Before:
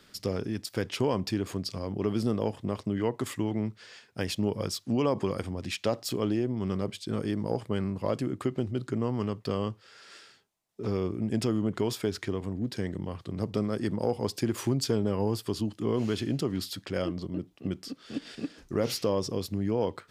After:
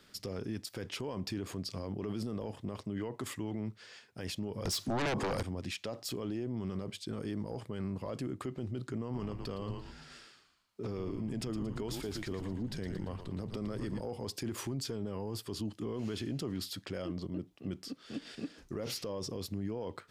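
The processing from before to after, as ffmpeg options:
ffmpeg -i in.wav -filter_complex "[0:a]asettb=1/sr,asplit=3[link_01][link_02][link_03];[link_01]atrim=end=4.654[link_04];[link_02]atrim=start=4.65:end=5.43,asetpts=PTS-STARTPTS,afade=type=in:duration=0.004:curve=qsin,afade=type=out:start_time=0.776:duration=0.004:curve=qsin,aeval=exprs='0.178*sin(PI/2*4.47*val(0)/0.178)':channel_layout=same[link_05];[link_03]atrim=start=5.426[link_06];[link_04][link_05]acrossfade=duration=0.004:curve1=hsin:curve2=qsin[link_07];[link_07][link_06]acrossfade=duration=0.004:curve1=qsin:curve2=hsin,asettb=1/sr,asplit=3[link_08][link_09][link_10];[link_08]atrim=end=9.024[link_11];[link_09]atrim=start=9.02:end=14.01,asetpts=PTS-STARTPTS,afade=type=in:duration=0.004:curve=qsin,afade=type=out:start_time=4.986:duration=0.004:curve=qsin,asplit=6[link_12][link_13][link_14][link_15][link_16][link_17];[link_13]adelay=114,afreqshift=-88,volume=-9.5dB[link_18];[link_14]adelay=228,afreqshift=-176,volume=-15.9dB[link_19];[link_15]adelay=342,afreqshift=-264,volume=-22.3dB[link_20];[link_16]adelay=456,afreqshift=-352,volume=-28.6dB[link_21];[link_17]adelay=570,afreqshift=-440,volume=-35dB[link_22];[link_12][link_18][link_19][link_20][link_21][link_22]amix=inputs=6:normalize=0,atrim=end_sample=220059[link_23];[link_10]atrim=start=14.006[link_24];[link_11][link_23]acrossfade=duration=0.004:curve1=hsin:curve2=qsin[link_25];[link_25][link_24]acrossfade=duration=0.004:curve1=qsin:curve2=hsin,alimiter=level_in=1.5dB:limit=-24dB:level=0:latency=1:release=21,volume=-1.5dB,volume=-3.5dB" out.wav

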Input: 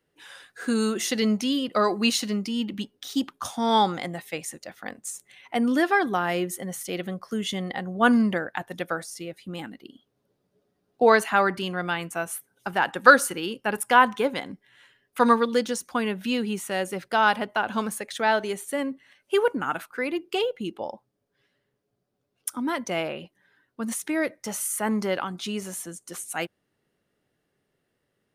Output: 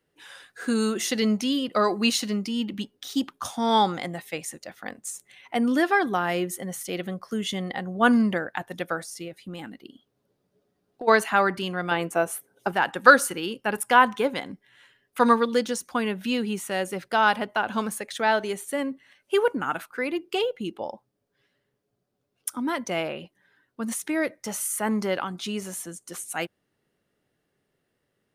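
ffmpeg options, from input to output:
ffmpeg -i in.wav -filter_complex "[0:a]asplit=3[link_01][link_02][link_03];[link_01]afade=type=out:start_time=9.27:duration=0.02[link_04];[link_02]acompressor=threshold=-32dB:ratio=6:attack=3.2:release=140:knee=1:detection=peak,afade=type=in:start_time=9.27:duration=0.02,afade=type=out:start_time=11.07:duration=0.02[link_05];[link_03]afade=type=in:start_time=11.07:duration=0.02[link_06];[link_04][link_05][link_06]amix=inputs=3:normalize=0,asettb=1/sr,asplit=3[link_07][link_08][link_09];[link_07]atrim=end=11.914[link_10];[link_08]atrim=start=11.91:end=12.72,asetpts=PTS-STARTPTS,afade=type=in:duration=0.004:curve=qsin,afade=type=out:start_time=0.806:duration=0.004:curve=qsin,equalizer=frequency=470:width_type=o:width=1.7:gain=10[link_11];[link_09]atrim=start=12.716[link_12];[link_10][link_11]acrossfade=duration=0.004:curve1=hsin:curve2=qsin[link_13];[link_13][link_12]acrossfade=duration=0.004:curve1=qsin:curve2=hsin" out.wav

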